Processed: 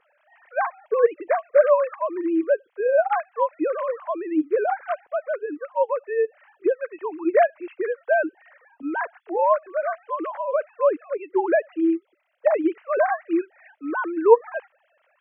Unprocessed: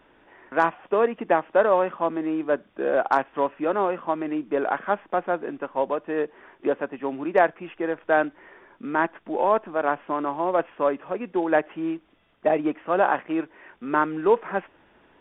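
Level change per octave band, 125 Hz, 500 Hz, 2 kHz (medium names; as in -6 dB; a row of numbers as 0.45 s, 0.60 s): under -25 dB, +2.5 dB, -1.0 dB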